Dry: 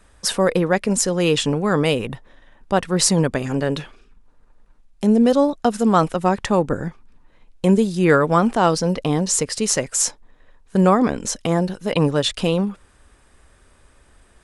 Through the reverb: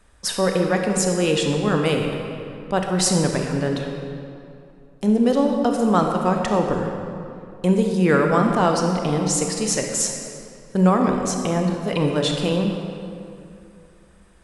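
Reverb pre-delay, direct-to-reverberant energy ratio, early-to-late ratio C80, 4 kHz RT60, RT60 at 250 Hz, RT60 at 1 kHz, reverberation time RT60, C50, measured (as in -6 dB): 27 ms, 2.5 dB, 4.5 dB, 1.7 s, 2.8 s, 2.6 s, 2.7 s, 3.0 dB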